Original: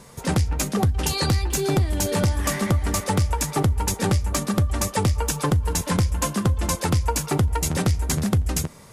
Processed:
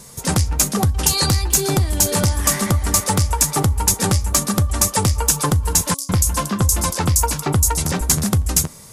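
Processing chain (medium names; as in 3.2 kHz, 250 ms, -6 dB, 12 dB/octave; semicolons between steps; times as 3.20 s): tone controls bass +3 dB, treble +12 dB; 5.94–8.01 s: bands offset in time highs, lows 150 ms, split 4.9 kHz; dynamic bell 1.1 kHz, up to +5 dB, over -37 dBFS, Q 0.99; de-hum 277.4 Hz, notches 4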